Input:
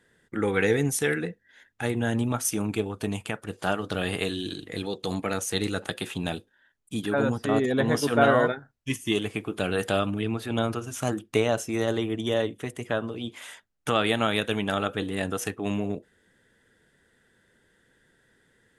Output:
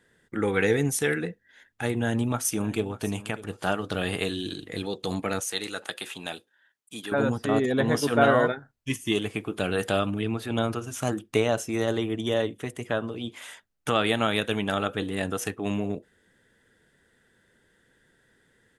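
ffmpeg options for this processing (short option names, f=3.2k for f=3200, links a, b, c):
-filter_complex "[0:a]asplit=2[a][b];[b]afade=t=in:st=1.99:d=0.01,afade=t=out:st=3.01:d=0.01,aecho=0:1:600|1200:0.133352|0.0266704[c];[a][c]amix=inputs=2:normalize=0,asettb=1/sr,asplit=3[d][e][f];[d]atrim=end=5.404[g];[e]atrim=start=5.4:end=7.12,asetpts=PTS-STARTPTS,afade=t=in:d=0.004:c=qsin,afade=t=out:st=1.716:d=0.004:c=qsin,highpass=f=780:p=1[h];[f]atrim=start=7.116[i];[g][h]acrossfade=d=0.004:c1=hsin:c2=qsin[j];[j][i]acrossfade=d=0.004:c1=qsin:c2=hsin"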